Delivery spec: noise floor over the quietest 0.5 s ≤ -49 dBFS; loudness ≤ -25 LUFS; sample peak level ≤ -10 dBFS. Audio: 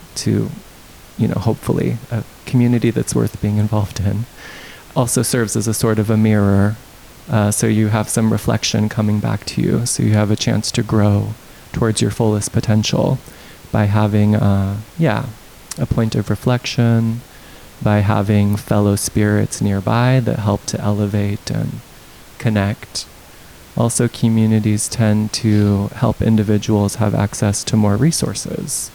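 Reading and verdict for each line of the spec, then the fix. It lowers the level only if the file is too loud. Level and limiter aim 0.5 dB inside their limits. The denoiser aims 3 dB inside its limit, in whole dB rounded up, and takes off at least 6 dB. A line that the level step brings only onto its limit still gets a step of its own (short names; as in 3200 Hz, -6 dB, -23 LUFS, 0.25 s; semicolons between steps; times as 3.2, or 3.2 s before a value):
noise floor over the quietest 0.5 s -40 dBFS: fail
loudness -17.0 LUFS: fail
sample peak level -4.5 dBFS: fail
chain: denoiser 6 dB, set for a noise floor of -40 dBFS; gain -8.5 dB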